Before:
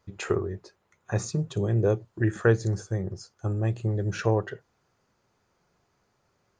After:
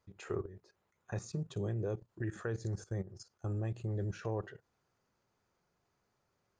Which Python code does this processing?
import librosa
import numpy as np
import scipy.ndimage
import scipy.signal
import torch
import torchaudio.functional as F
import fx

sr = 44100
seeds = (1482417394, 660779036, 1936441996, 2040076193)

y = fx.level_steps(x, sr, step_db=15)
y = y * librosa.db_to_amplitude(-5.0)